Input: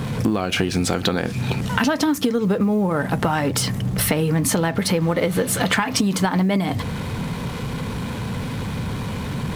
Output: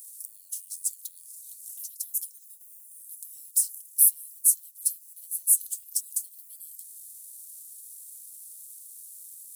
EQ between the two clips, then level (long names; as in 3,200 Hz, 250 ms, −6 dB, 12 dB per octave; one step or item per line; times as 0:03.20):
inverse Chebyshev high-pass filter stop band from 1,800 Hz, stop band 80 dB
+7.5 dB